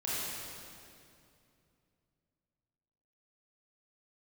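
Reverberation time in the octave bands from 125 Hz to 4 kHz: 3.6, 3.2, 2.7, 2.4, 2.2, 2.1 s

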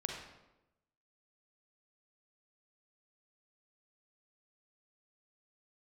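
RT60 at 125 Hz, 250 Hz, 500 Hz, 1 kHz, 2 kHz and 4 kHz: 1.1, 1.1, 1.0, 0.90, 0.80, 0.65 s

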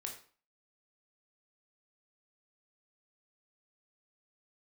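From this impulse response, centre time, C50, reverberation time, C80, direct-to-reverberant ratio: 22 ms, 7.5 dB, 0.45 s, 12.0 dB, 1.0 dB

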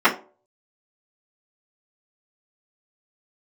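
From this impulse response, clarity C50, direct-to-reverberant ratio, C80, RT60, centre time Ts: 13.5 dB, -13.0 dB, 19.0 dB, 0.40 s, 14 ms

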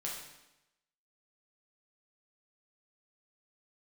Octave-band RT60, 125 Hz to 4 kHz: 0.90, 0.95, 0.90, 0.90, 0.90, 0.90 s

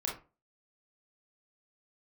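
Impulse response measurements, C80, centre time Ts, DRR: 14.0 dB, 30 ms, -2.5 dB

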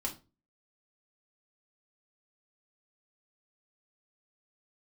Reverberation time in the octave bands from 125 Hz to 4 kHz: 0.40, 0.40, 0.35, 0.30, 0.25, 0.25 s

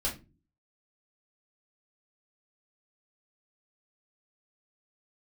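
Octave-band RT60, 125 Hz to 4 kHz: 0.60, 0.55, 0.35, 0.25, 0.25, 0.20 s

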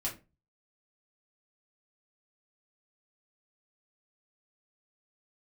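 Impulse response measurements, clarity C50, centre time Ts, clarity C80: 11.5 dB, 21 ms, 18.0 dB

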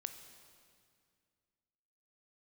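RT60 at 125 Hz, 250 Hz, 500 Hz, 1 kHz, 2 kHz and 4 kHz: 2.6, 2.6, 2.2, 2.1, 2.0, 1.9 s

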